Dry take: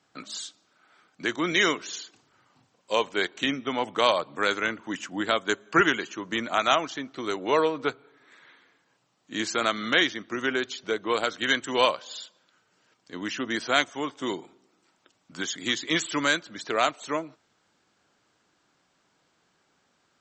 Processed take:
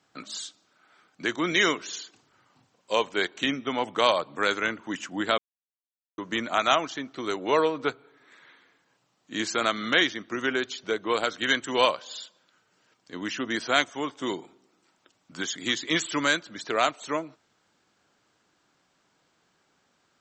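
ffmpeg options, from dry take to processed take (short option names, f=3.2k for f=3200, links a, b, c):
-filter_complex "[0:a]asplit=3[a][b][c];[a]atrim=end=5.38,asetpts=PTS-STARTPTS,afade=t=out:st=5.376:d=0.004:c=hsin[d];[b]atrim=start=5.38:end=6.18,asetpts=PTS-STARTPTS,volume=0[e];[c]atrim=start=6.18,asetpts=PTS-STARTPTS,afade=t=in:d=0.004:c=hsin[f];[d][e][f]concat=n=3:v=0:a=1"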